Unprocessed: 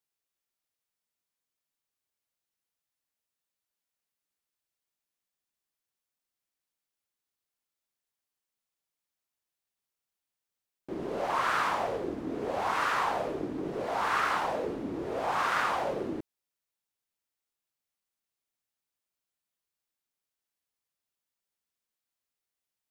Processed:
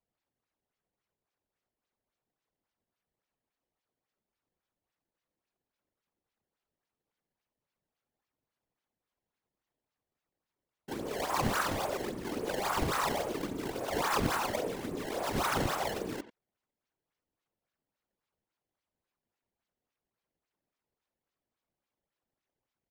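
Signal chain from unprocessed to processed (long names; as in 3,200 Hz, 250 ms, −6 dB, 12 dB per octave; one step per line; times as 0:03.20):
sample-and-hold swept by an LFO 21×, swing 160% 3.6 Hz
far-end echo of a speakerphone 90 ms, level −13 dB
random phases in short frames
level −2.5 dB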